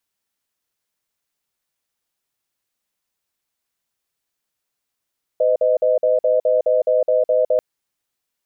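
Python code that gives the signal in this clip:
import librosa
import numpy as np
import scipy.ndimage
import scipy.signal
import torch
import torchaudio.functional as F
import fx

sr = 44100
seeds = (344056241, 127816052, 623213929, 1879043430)

y = fx.cadence(sr, length_s=2.19, low_hz=508.0, high_hz=620.0, on_s=0.16, off_s=0.05, level_db=-16.0)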